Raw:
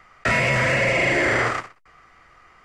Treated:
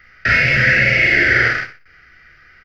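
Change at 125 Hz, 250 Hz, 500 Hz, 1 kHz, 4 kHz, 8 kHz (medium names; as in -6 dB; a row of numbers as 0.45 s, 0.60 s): +4.5 dB, +1.5 dB, -2.5 dB, -1.5 dB, +5.5 dB, no reading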